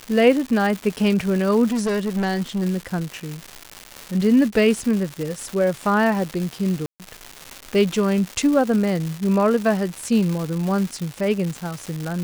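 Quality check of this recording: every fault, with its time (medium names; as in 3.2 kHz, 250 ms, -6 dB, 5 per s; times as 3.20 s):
crackle 370 per s -25 dBFS
1.71–2.63 s: clipped -18.5 dBFS
6.86–7.00 s: dropout 138 ms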